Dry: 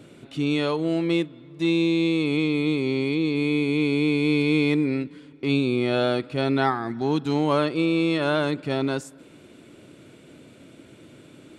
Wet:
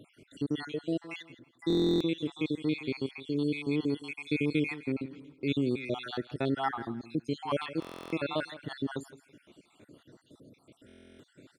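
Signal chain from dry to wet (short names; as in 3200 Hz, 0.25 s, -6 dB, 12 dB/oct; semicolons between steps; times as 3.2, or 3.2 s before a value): random spectral dropouts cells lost 65%; feedback echo 0.165 s, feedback 22%, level -15.5 dB; stuck buffer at 1.68/7.8/10.87, samples 1024, times 13; gain -5.5 dB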